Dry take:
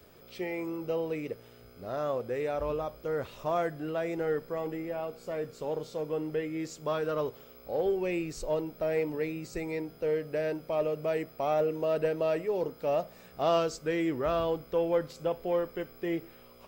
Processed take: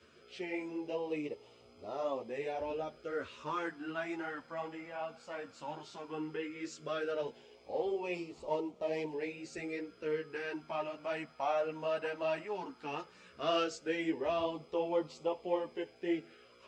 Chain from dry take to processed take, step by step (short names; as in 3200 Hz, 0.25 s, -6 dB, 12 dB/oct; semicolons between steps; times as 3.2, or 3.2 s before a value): 8.14–9.11 median filter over 15 samples; LFO notch sine 0.15 Hz 380–1600 Hz; speaker cabinet 110–7800 Hz, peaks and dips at 130 Hz -8 dB, 190 Hz -7 dB, 520 Hz -3 dB, 920 Hz +6 dB, 1500 Hz +5 dB, 2800 Hz +5 dB; ensemble effect